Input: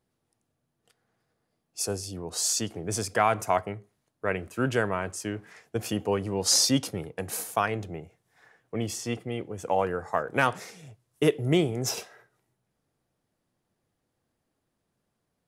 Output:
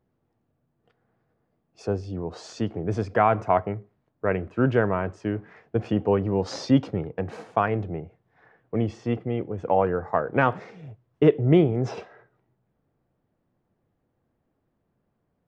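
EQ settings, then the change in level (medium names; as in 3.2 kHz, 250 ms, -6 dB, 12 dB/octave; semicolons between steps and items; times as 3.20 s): tape spacing loss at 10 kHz 43 dB; +7.0 dB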